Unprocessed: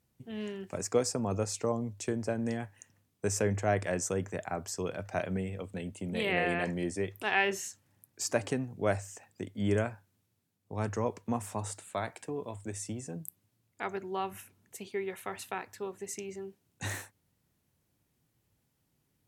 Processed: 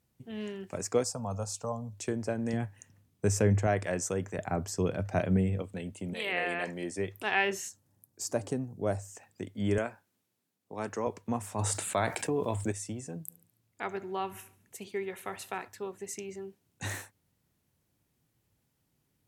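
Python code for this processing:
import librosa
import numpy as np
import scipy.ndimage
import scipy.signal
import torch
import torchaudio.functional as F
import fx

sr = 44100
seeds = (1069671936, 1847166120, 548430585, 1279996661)

y = fx.fixed_phaser(x, sr, hz=850.0, stages=4, at=(1.04, 1.93))
y = fx.low_shelf(y, sr, hz=250.0, db=9.0, at=(2.53, 3.67))
y = fx.low_shelf(y, sr, hz=380.0, db=10.0, at=(4.38, 5.62))
y = fx.highpass(y, sr, hz=fx.line((6.13, 850.0), (6.97, 260.0)), slope=6, at=(6.13, 6.97), fade=0.02)
y = fx.peak_eq(y, sr, hz=2200.0, db=-11.0, octaves=1.8, at=(7.69, 9.15))
y = fx.highpass(y, sr, hz=220.0, slope=12, at=(9.78, 11.07))
y = fx.env_flatten(y, sr, amount_pct=50, at=(11.58, 12.71), fade=0.02)
y = fx.echo_feedback(y, sr, ms=71, feedback_pct=52, wet_db=-19.0, at=(13.28, 15.67), fade=0.02)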